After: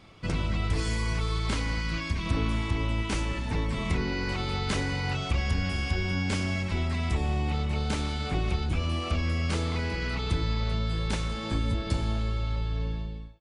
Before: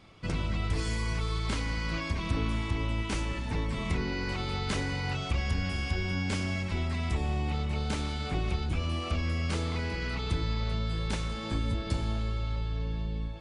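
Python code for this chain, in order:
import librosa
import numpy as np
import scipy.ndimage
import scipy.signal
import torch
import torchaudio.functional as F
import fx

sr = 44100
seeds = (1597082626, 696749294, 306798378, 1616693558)

y = fx.fade_out_tail(x, sr, length_s=0.55)
y = fx.peak_eq(y, sr, hz=630.0, db=-7.0, octaves=1.6, at=(1.81, 2.26))
y = F.gain(torch.from_numpy(y), 2.5).numpy()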